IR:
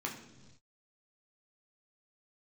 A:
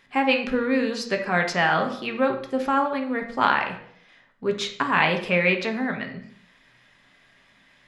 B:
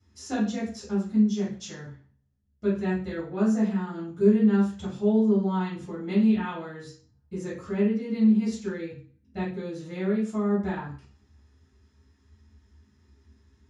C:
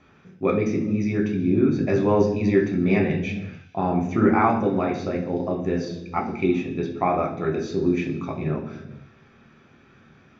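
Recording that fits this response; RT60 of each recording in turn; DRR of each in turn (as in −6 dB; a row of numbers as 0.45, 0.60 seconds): C; 0.60 s, 0.40 s, non-exponential decay; 4.0, −11.5, −0.5 decibels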